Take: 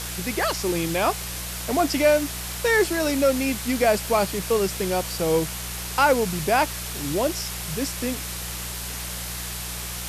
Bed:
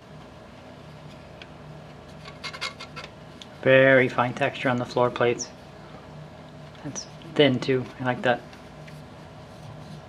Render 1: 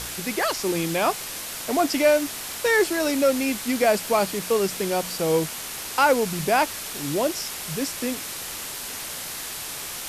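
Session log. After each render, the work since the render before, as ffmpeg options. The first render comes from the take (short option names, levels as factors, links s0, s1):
-af "bandreject=f=60:t=h:w=4,bandreject=f=120:t=h:w=4,bandreject=f=180:t=h:w=4"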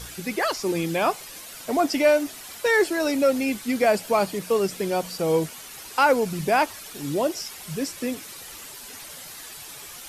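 -af "afftdn=nr=10:nf=-34"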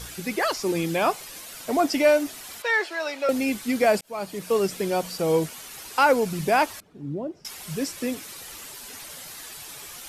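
-filter_complex "[0:a]asettb=1/sr,asplit=3[s0][s1][s2];[s0]atrim=end=2.624[s3];[s1]atrim=start=2.62:end=3.29,asetpts=PTS-STARTPTS,afade=t=in:d=0.004:c=qsin,afade=t=out:st=0.666:d=0.004:c=qsin,acrossover=split=570 5100:gain=0.0794 1 0.158[s4][s5][s6];[s4][s5][s6]amix=inputs=3:normalize=0[s7];[s2]atrim=start=3.286[s8];[s3][s7]acrossfade=d=0.004:c1=hsin:c2=qsin[s9];[s9][s8]acrossfade=d=0.004:c1=qsin:c2=hsin,asettb=1/sr,asplit=3[s10][s11][s12];[s10]atrim=end=6.804[s13];[s11]atrim=start=6.8:end=7.45,asetpts=PTS-STARTPTS,afade=t=in:d=0.004:c=qsin,afade=t=out:st=0.646:d=0.004:c=qsin,bandpass=f=150:t=q:w=0.86[s14];[s12]atrim=start=7.446[s15];[s13][s14]acrossfade=d=0.004:c1=hsin:c2=qsin[s16];[s16][s15]acrossfade=d=0.004:c1=qsin:c2=hsin,asplit=2[s17][s18];[s17]atrim=end=4.01,asetpts=PTS-STARTPTS,afade=t=out:st=4.006:d=0.004:c=hsin[s19];[s18]atrim=start=4.01,asetpts=PTS-STARTPTS,afade=t=in:d=0.56[s20];[s19][s20]concat=n=2:v=0:a=1"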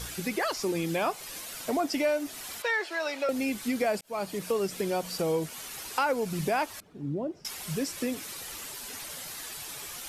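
-af "acompressor=threshold=0.0398:ratio=2.5"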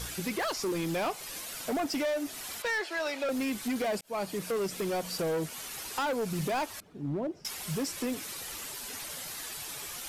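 -af "volume=23.7,asoftclip=hard,volume=0.0422"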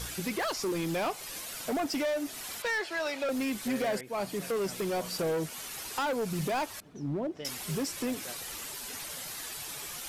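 -filter_complex "[1:a]volume=0.0562[s0];[0:a][s0]amix=inputs=2:normalize=0"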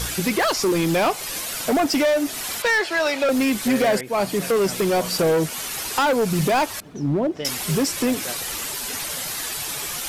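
-af "volume=3.76"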